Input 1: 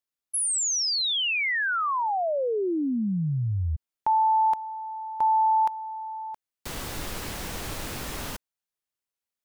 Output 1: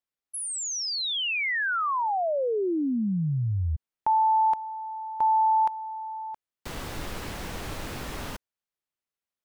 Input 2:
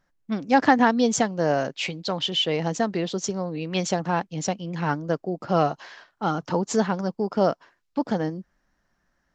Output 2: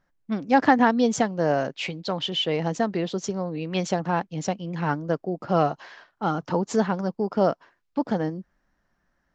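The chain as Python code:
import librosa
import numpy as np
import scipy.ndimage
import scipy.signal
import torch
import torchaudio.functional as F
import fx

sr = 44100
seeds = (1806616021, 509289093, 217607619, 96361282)

y = fx.high_shelf(x, sr, hz=4600.0, db=-8.0)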